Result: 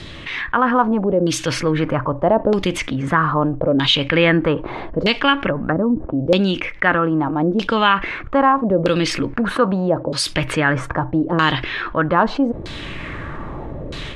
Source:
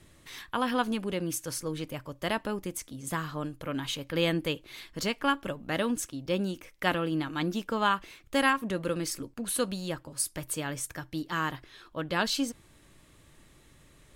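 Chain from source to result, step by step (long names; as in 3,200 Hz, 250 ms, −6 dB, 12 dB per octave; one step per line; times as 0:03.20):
0:05.39–0:06.19: treble cut that deepens with the level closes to 390 Hz, closed at −27.5 dBFS
0:09.55–0:10.29: high-pass filter 150 Hz 6 dB per octave
auto-filter low-pass saw down 0.79 Hz 490–4,300 Hz
automatic gain control gain up to 13 dB
0:10.89–0:11.42: high-shelf EQ 8,600 Hz −9 dB
envelope flattener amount 50%
level −2 dB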